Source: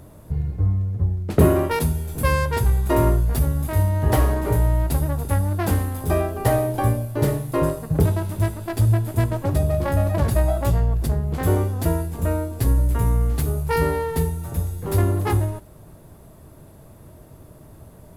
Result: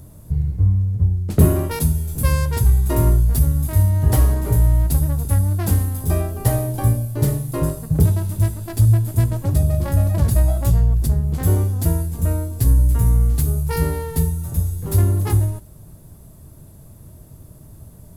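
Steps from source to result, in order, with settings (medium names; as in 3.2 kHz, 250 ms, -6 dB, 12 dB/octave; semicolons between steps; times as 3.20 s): tone controls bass +10 dB, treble +11 dB; trim -5.5 dB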